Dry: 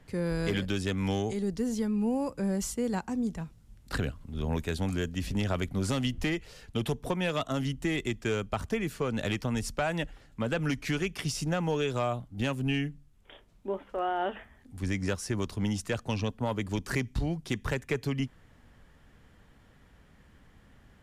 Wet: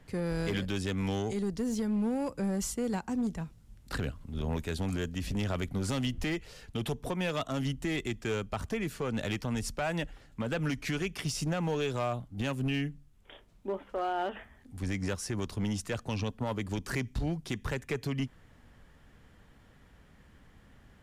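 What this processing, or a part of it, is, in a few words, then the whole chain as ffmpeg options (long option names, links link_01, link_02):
limiter into clipper: -af "alimiter=limit=-23.5dB:level=0:latency=1:release=112,asoftclip=type=hard:threshold=-26dB"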